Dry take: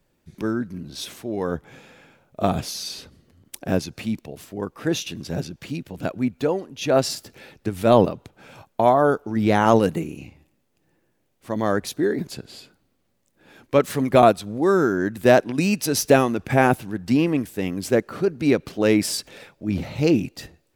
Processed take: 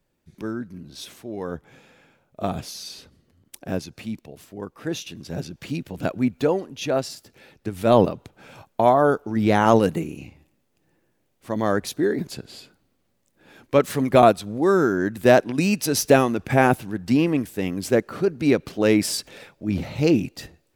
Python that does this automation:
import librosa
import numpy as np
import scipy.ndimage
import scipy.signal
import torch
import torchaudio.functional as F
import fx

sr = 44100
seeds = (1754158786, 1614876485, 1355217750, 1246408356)

y = fx.gain(x, sr, db=fx.line((5.2, -5.0), (5.73, 1.5), (6.73, 1.5), (7.1, -8.5), (8.04, 0.0)))